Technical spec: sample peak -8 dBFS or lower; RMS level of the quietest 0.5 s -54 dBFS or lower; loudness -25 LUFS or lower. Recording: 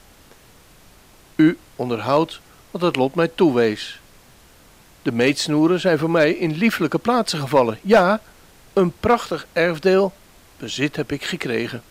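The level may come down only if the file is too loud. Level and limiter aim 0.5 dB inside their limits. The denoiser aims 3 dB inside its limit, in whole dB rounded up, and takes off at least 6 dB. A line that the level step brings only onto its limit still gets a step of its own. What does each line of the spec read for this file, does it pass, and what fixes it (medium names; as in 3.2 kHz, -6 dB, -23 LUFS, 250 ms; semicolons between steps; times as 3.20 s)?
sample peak -5.5 dBFS: fail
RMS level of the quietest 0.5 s -49 dBFS: fail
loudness -19.5 LUFS: fail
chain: trim -6 dB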